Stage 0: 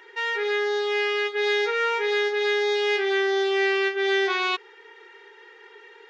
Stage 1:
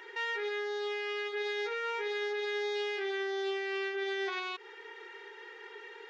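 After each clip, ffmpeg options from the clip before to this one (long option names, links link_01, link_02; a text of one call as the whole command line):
ffmpeg -i in.wav -af "acompressor=threshold=-26dB:ratio=6,alimiter=level_in=4dB:limit=-24dB:level=0:latency=1:release=63,volume=-4dB" out.wav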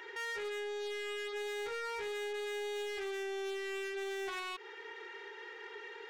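ffmpeg -i in.wav -af "asoftclip=type=tanh:threshold=-37.5dB,volume=1dB" out.wav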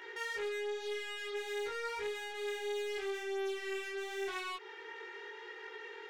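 ffmpeg -i in.wav -af "flanger=delay=18:depth=4.3:speed=0.88,volume=3dB" out.wav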